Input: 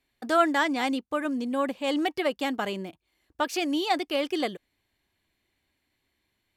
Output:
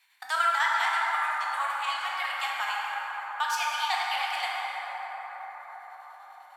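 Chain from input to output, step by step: elliptic high-pass 860 Hz, stop band 50 dB; chopper 10 Hz, depth 60%, duty 55%; plate-style reverb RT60 4.9 s, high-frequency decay 0.3×, DRR -5.5 dB; three-band squash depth 40%

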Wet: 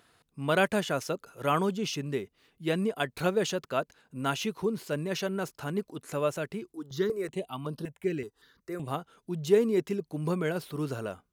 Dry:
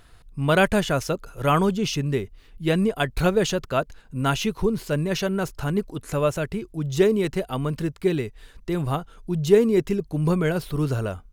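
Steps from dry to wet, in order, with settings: HPF 180 Hz 12 dB/oct; 6.72–8.88 step phaser 5.3 Hz 610–7300 Hz; gain -6 dB

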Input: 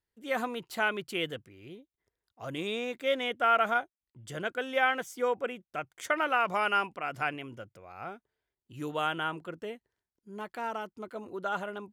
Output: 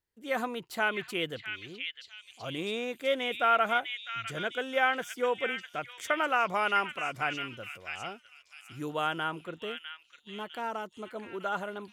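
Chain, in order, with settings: delay with a stepping band-pass 0.653 s, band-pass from 2600 Hz, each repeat 0.7 oct, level -2 dB

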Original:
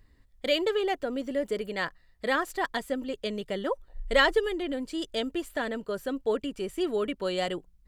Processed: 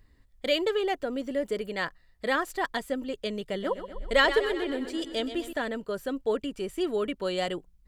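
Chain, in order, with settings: 3.41–5.53 warbling echo 0.125 s, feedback 61%, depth 56 cents, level -11 dB

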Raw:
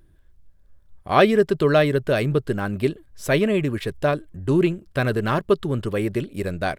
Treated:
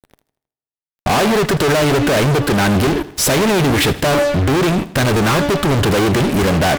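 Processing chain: gate with hold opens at -48 dBFS; HPF 63 Hz 6 dB/oct; de-hum 288.8 Hz, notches 12; compressor 4:1, threshold -22 dBFS, peak gain reduction 10 dB; fuzz box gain 48 dB, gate -52 dBFS; feedback echo 79 ms, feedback 49%, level -18 dB; reverb RT60 1.0 s, pre-delay 4 ms, DRR 22 dB

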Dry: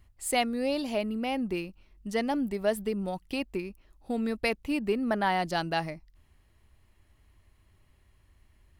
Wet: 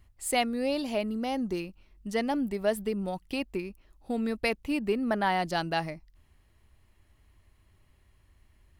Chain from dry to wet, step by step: 1.07–1.6 thirty-one-band EQ 2500 Hz -10 dB, 4000 Hz +3 dB, 6300 Hz +11 dB

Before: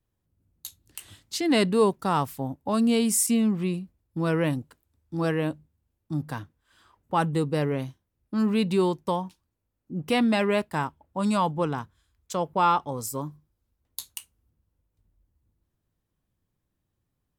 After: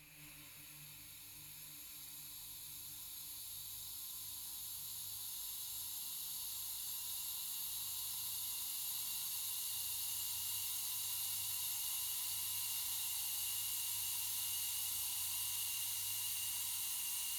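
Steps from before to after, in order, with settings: rattling part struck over -41 dBFS, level -18 dBFS; compressor 4:1, threshold -38 dBFS, peak gain reduction 18 dB; Paulstretch 31×, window 1.00 s, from 13.64; on a send: diffused feedback echo 1.456 s, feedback 68%, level -5 dB; on the sum: non-linear reverb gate 0.25 s rising, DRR -4 dB; gain -1 dB

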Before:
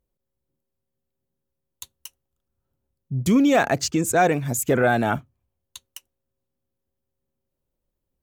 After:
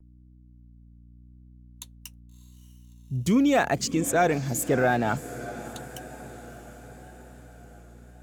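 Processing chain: spectral noise reduction 11 dB; hum 60 Hz, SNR 23 dB; on a send: diffused feedback echo 0.633 s, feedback 59%, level -15 dB; on the sum: vibrato 0.87 Hz 40 cents; 4.68–5.17 decimation joined by straight lines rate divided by 3×; gain -3.5 dB

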